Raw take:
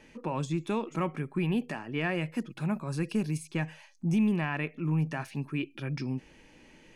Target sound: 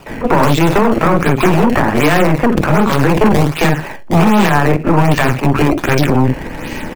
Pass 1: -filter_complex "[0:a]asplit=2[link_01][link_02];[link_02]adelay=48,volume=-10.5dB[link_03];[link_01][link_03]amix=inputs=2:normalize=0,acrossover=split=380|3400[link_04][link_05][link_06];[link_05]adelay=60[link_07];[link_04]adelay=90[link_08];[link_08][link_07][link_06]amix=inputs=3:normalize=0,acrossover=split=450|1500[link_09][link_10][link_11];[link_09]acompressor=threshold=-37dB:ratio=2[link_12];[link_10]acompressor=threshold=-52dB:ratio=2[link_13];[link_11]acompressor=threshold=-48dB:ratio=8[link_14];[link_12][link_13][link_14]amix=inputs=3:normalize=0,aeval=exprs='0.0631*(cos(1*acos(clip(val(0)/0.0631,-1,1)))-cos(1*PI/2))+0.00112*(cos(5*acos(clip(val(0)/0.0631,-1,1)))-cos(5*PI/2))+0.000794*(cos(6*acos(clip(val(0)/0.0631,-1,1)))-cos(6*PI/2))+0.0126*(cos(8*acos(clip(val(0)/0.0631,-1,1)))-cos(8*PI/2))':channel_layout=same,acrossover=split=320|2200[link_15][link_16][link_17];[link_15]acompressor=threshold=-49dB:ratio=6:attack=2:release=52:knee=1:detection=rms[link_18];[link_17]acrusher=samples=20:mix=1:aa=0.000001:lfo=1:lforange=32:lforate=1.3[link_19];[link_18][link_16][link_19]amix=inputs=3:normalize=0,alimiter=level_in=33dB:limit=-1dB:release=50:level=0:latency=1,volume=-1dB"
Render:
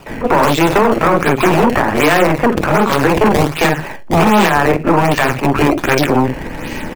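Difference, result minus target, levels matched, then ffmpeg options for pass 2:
downward compressor: peak gain reduction +9 dB
-filter_complex "[0:a]asplit=2[link_01][link_02];[link_02]adelay=48,volume=-10.5dB[link_03];[link_01][link_03]amix=inputs=2:normalize=0,acrossover=split=380|3400[link_04][link_05][link_06];[link_05]adelay=60[link_07];[link_04]adelay=90[link_08];[link_08][link_07][link_06]amix=inputs=3:normalize=0,acrossover=split=450|1500[link_09][link_10][link_11];[link_09]acompressor=threshold=-37dB:ratio=2[link_12];[link_10]acompressor=threshold=-52dB:ratio=2[link_13];[link_11]acompressor=threshold=-48dB:ratio=8[link_14];[link_12][link_13][link_14]amix=inputs=3:normalize=0,aeval=exprs='0.0631*(cos(1*acos(clip(val(0)/0.0631,-1,1)))-cos(1*PI/2))+0.00112*(cos(5*acos(clip(val(0)/0.0631,-1,1)))-cos(5*PI/2))+0.000794*(cos(6*acos(clip(val(0)/0.0631,-1,1)))-cos(6*PI/2))+0.0126*(cos(8*acos(clip(val(0)/0.0631,-1,1)))-cos(8*PI/2))':channel_layout=same,acrossover=split=320|2200[link_15][link_16][link_17];[link_15]acompressor=threshold=-38dB:ratio=6:attack=2:release=52:knee=1:detection=rms[link_18];[link_17]acrusher=samples=20:mix=1:aa=0.000001:lfo=1:lforange=32:lforate=1.3[link_19];[link_18][link_16][link_19]amix=inputs=3:normalize=0,alimiter=level_in=33dB:limit=-1dB:release=50:level=0:latency=1,volume=-1dB"

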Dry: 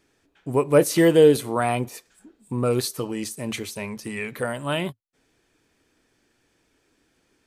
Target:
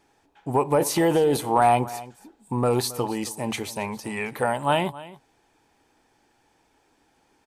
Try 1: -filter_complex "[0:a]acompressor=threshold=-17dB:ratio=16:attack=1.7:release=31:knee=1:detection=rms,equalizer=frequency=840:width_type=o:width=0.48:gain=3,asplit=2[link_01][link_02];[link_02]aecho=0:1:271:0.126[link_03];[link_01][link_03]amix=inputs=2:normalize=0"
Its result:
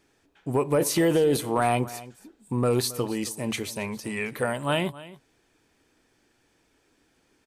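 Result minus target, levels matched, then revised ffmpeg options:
1,000 Hz band −5.0 dB
-filter_complex "[0:a]acompressor=threshold=-17dB:ratio=16:attack=1.7:release=31:knee=1:detection=rms,equalizer=frequency=840:width_type=o:width=0.48:gain=15,asplit=2[link_01][link_02];[link_02]aecho=0:1:271:0.126[link_03];[link_01][link_03]amix=inputs=2:normalize=0"

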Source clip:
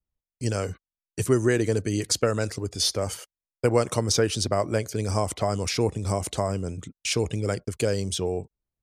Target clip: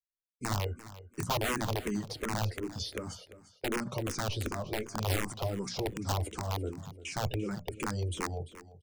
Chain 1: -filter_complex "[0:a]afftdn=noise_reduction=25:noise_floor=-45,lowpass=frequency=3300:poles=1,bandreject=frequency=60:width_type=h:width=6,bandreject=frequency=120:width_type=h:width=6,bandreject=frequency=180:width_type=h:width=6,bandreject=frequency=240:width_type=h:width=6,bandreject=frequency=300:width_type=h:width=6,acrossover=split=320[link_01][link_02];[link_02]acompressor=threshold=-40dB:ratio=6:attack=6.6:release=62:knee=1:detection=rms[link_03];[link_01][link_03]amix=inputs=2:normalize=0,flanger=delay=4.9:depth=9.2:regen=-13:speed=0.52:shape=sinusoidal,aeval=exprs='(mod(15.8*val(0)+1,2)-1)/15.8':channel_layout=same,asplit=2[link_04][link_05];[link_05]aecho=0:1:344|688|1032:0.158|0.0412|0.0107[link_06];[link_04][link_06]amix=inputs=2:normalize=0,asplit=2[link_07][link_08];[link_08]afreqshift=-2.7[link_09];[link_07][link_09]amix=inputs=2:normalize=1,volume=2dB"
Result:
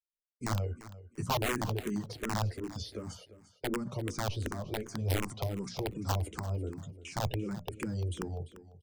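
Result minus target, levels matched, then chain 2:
downward compressor: peak gain reduction +6 dB
-filter_complex "[0:a]afftdn=noise_reduction=25:noise_floor=-45,lowpass=frequency=3300:poles=1,bandreject=frequency=60:width_type=h:width=6,bandreject=frequency=120:width_type=h:width=6,bandreject=frequency=180:width_type=h:width=6,bandreject=frequency=240:width_type=h:width=6,bandreject=frequency=300:width_type=h:width=6,acrossover=split=320[link_01][link_02];[link_02]acompressor=threshold=-33dB:ratio=6:attack=6.6:release=62:knee=1:detection=rms[link_03];[link_01][link_03]amix=inputs=2:normalize=0,flanger=delay=4.9:depth=9.2:regen=-13:speed=0.52:shape=sinusoidal,aeval=exprs='(mod(15.8*val(0)+1,2)-1)/15.8':channel_layout=same,asplit=2[link_04][link_05];[link_05]aecho=0:1:344|688|1032:0.158|0.0412|0.0107[link_06];[link_04][link_06]amix=inputs=2:normalize=0,asplit=2[link_07][link_08];[link_08]afreqshift=-2.7[link_09];[link_07][link_09]amix=inputs=2:normalize=1,volume=2dB"

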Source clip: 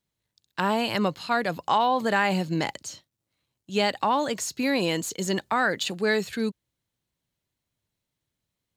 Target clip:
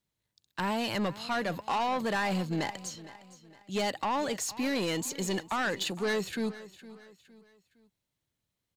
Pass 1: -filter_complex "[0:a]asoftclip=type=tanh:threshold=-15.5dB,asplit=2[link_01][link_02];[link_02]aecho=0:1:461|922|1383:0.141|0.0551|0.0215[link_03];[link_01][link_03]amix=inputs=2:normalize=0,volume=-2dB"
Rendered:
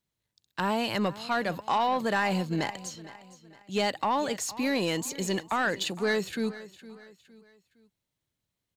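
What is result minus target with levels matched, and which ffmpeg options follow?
soft clipping: distortion −8 dB
-filter_complex "[0:a]asoftclip=type=tanh:threshold=-23dB,asplit=2[link_01][link_02];[link_02]aecho=0:1:461|922|1383:0.141|0.0551|0.0215[link_03];[link_01][link_03]amix=inputs=2:normalize=0,volume=-2dB"

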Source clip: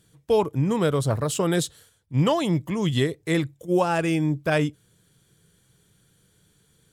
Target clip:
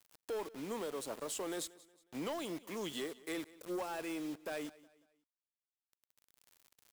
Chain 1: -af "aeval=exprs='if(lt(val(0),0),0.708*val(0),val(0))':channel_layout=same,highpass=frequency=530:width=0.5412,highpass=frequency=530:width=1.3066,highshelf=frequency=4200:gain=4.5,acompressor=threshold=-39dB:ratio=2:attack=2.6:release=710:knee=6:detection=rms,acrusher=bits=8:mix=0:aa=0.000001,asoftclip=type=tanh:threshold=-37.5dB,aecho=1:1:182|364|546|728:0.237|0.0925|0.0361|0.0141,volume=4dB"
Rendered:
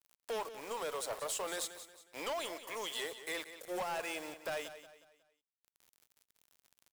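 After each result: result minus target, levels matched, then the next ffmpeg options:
250 Hz band −10.5 dB; downward compressor: peak gain reduction −6.5 dB; echo-to-direct +8 dB
-af "aeval=exprs='if(lt(val(0),0),0.708*val(0),val(0))':channel_layout=same,highpass=frequency=260:width=0.5412,highpass=frequency=260:width=1.3066,highshelf=frequency=4200:gain=4.5,acompressor=threshold=-39dB:ratio=2:attack=2.6:release=710:knee=6:detection=rms,acrusher=bits=8:mix=0:aa=0.000001,asoftclip=type=tanh:threshold=-37.5dB,aecho=1:1:182|364|546|728:0.237|0.0925|0.0361|0.0141,volume=4dB"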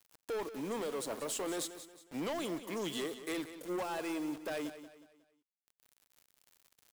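echo-to-direct +8 dB; downward compressor: peak gain reduction −5 dB
-af "aeval=exprs='if(lt(val(0),0),0.708*val(0),val(0))':channel_layout=same,highpass=frequency=260:width=0.5412,highpass=frequency=260:width=1.3066,highshelf=frequency=4200:gain=4.5,acompressor=threshold=-39dB:ratio=2:attack=2.6:release=710:knee=6:detection=rms,acrusher=bits=8:mix=0:aa=0.000001,asoftclip=type=tanh:threshold=-37.5dB,aecho=1:1:182|364|546:0.0944|0.0368|0.0144,volume=4dB"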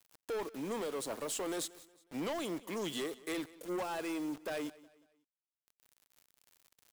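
downward compressor: peak gain reduction −5 dB
-af "aeval=exprs='if(lt(val(0),0),0.708*val(0),val(0))':channel_layout=same,highpass=frequency=260:width=0.5412,highpass=frequency=260:width=1.3066,highshelf=frequency=4200:gain=4.5,acompressor=threshold=-49.5dB:ratio=2:attack=2.6:release=710:knee=6:detection=rms,acrusher=bits=8:mix=0:aa=0.000001,asoftclip=type=tanh:threshold=-37.5dB,aecho=1:1:182|364|546:0.0944|0.0368|0.0144,volume=4dB"

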